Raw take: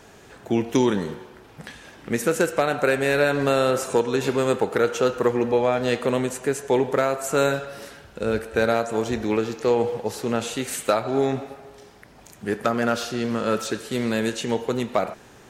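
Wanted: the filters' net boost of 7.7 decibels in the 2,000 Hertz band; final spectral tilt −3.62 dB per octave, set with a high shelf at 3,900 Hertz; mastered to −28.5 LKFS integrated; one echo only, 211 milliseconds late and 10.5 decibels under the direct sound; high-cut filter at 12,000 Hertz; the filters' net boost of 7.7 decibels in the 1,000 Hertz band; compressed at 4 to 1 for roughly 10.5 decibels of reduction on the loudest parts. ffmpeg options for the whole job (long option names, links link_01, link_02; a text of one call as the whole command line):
ffmpeg -i in.wav -af "lowpass=12000,equalizer=frequency=1000:width_type=o:gain=8.5,equalizer=frequency=2000:width_type=o:gain=8,highshelf=frequency=3900:gain=-5,acompressor=threshold=-24dB:ratio=4,aecho=1:1:211:0.299,volume=-0.5dB" out.wav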